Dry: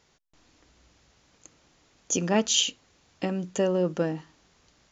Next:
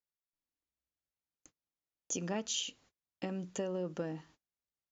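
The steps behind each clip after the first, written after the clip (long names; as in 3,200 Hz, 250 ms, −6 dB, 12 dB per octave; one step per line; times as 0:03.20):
noise gate −52 dBFS, range −32 dB
downward compressor 4 to 1, threshold −26 dBFS, peak gain reduction 7.5 dB
level −7.5 dB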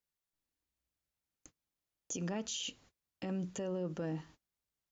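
low-shelf EQ 170 Hz +6.5 dB
brickwall limiter −33 dBFS, peak gain reduction 10 dB
level +2.5 dB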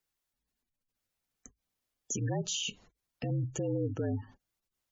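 frequency shifter −55 Hz
gate on every frequency bin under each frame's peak −20 dB strong
level +5.5 dB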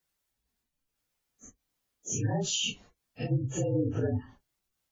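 random phases in long frames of 100 ms
level +4 dB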